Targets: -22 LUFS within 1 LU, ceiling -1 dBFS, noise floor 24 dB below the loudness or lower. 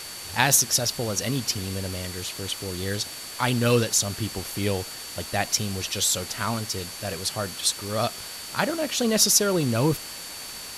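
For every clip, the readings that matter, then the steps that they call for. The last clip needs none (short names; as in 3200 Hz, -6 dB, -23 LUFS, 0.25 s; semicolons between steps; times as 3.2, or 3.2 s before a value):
steady tone 4500 Hz; tone level -41 dBFS; noise floor -38 dBFS; noise floor target -49 dBFS; loudness -24.5 LUFS; peak -2.0 dBFS; loudness target -22.0 LUFS
-> notch 4500 Hz, Q 30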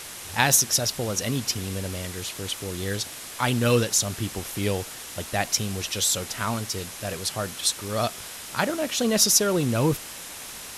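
steady tone none; noise floor -39 dBFS; noise floor target -49 dBFS
-> noise print and reduce 10 dB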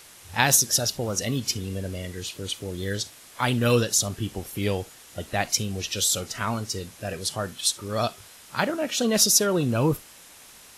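noise floor -49 dBFS; loudness -25.0 LUFS; peak -2.0 dBFS; loudness target -22.0 LUFS
-> gain +3 dB; limiter -1 dBFS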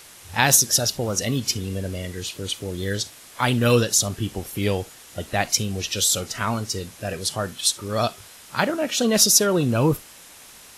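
loudness -22.0 LUFS; peak -1.0 dBFS; noise floor -46 dBFS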